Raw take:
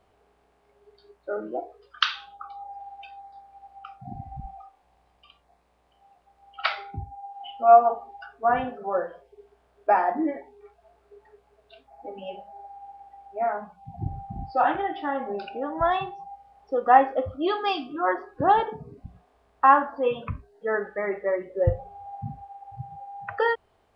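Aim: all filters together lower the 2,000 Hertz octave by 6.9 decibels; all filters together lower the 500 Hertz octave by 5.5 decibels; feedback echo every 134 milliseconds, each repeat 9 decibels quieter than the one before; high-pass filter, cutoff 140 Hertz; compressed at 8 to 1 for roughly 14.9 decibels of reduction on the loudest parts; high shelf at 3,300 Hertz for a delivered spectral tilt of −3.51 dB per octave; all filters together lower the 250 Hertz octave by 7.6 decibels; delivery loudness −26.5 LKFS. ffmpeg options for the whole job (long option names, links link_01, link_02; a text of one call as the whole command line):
ffmpeg -i in.wav -af "highpass=140,equalizer=frequency=250:width_type=o:gain=-7.5,equalizer=frequency=500:width_type=o:gain=-5.5,equalizer=frequency=2000:width_type=o:gain=-7,highshelf=frequency=3300:gain=-5.5,acompressor=threshold=-29dB:ratio=8,aecho=1:1:134|268|402|536:0.355|0.124|0.0435|0.0152,volume=11dB" out.wav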